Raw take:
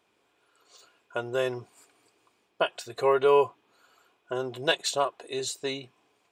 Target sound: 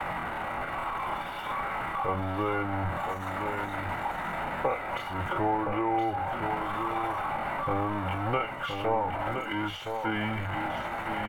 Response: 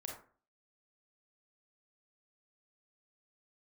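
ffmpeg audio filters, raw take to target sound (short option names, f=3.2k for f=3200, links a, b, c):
-filter_complex "[0:a]aeval=exprs='val(0)+0.5*0.0376*sgn(val(0))':c=same,acompressor=threshold=-23dB:ratio=10,atempo=0.56,firequalizer=gain_entry='entry(150,0);entry(340,-10);entry(1200,10);entry(6900,-27);entry(11000,-17)':delay=0.05:min_phase=1,agate=range=-33dB:threshold=-31dB:ratio=3:detection=peak,asetrate=35002,aresample=44100,atempo=1.25992,equalizer=f=82:t=o:w=1.4:g=-7.5,aecho=1:1:1.4:0.38,acrossover=split=410[a][b];[b]acompressor=threshold=-46dB:ratio=2.5[c];[a][c]amix=inputs=2:normalize=0,asplit=2[d][e];[e]aecho=0:1:1018:0.473[f];[d][f]amix=inputs=2:normalize=0,volume=9dB"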